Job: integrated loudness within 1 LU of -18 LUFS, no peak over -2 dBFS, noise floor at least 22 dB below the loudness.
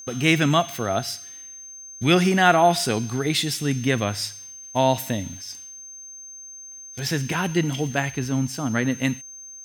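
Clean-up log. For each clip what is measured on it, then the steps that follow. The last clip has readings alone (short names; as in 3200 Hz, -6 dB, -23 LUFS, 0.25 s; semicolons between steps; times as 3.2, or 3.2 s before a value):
steady tone 6300 Hz; tone level -38 dBFS; loudness -22.5 LUFS; peak -3.0 dBFS; loudness target -18.0 LUFS
-> notch 6300 Hz, Q 30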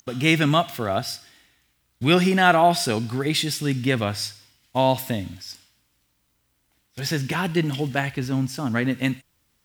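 steady tone none; loudness -22.5 LUFS; peak -3.0 dBFS; loudness target -18.0 LUFS
-> gain +4.5 dB; limiter -2 dBFS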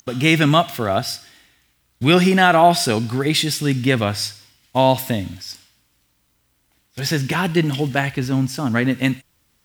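loudness -18.5 LUFS; peak -2.0 dBFS; noise floor -65 dBFS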